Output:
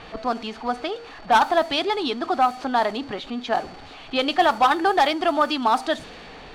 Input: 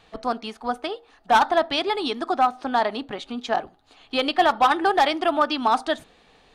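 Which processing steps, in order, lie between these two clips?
jump at every zero crossing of -35.5 dBFS; whistle 4.5 kHz -49 dBFS; level-controlled noise filter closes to 2.7 kHz, open at -14.5 dBFS

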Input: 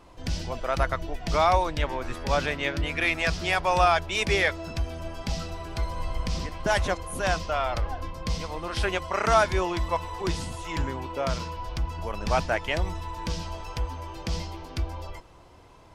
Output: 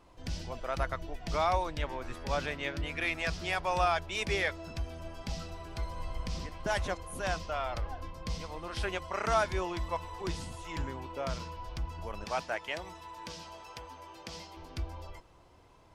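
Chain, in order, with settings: 12.24–14.57 s: high-pass 400 Hz 6 dB/octave; trim -7.5 dB

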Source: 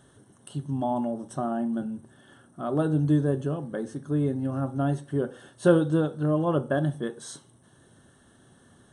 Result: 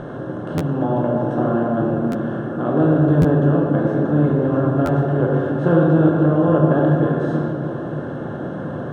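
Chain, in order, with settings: spectral levelling over time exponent 0.4; low-pass 2.1 kHz 12 dB/octave; bass shelf 89 Hz +7.5 dB; reverberation RT60 2.7 s, pre-delay 7 ms, DRR -1.5 dB; buffer glitch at 0.57/2.11/3.21/4.85 s, samples 512, times 2; trim -1 dB

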